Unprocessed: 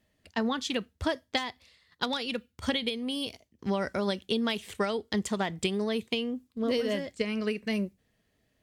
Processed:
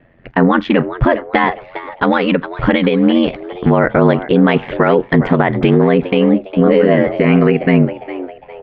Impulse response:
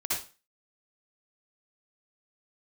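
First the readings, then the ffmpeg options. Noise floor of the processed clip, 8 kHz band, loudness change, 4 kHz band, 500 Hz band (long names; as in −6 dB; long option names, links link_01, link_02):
−40 dBFS, below −20 dB, +18.0 dB, +4.5 dB, +18.5 dB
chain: -filter_complex "[0:a]lowpass=frequency=2100:width=0.5412,lowpass=frequency=2100:width=1.3066,bandreject=frequency=170.3:width_type=h:width=4,bandreject=frequency=340.6:width_type=h:width=4,acontrast=60,aeval=exprs='val(0)*sin(2*PI*44*n/s)':channel_layout=same,asplit=4[link_01][link_02][link_03][link_04];[link_02]adelay=406,afreqshift=120,volume=-18dB[link_05];[link_03]adelay=812,afreqshift=240,volume=-26.4dB[link_06];[link_04]adelay=1218,afreqshift=360,volume=-34.8dB[link_07];[link_01][link_05][link_06][link_07]amix=inputs=4:normalize=0,alimiter=level_in=20.5dB:limit=-1dB:release=50:level=0:latency=1,volume=-1dB"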